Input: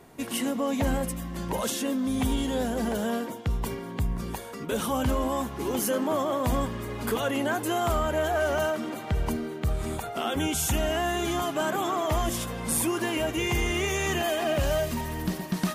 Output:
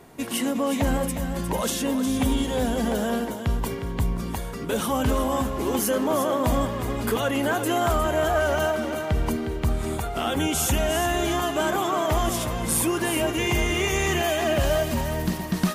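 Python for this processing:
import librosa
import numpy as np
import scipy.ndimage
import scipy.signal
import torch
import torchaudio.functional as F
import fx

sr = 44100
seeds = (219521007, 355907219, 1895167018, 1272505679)

y = x + 10.0 ** (-8.5 / 20.0) * np.pad(x, (int(359 * sr / 1000.0), 0))[:len(x)]
y = y * librosa.db_to_amplitude(3.0)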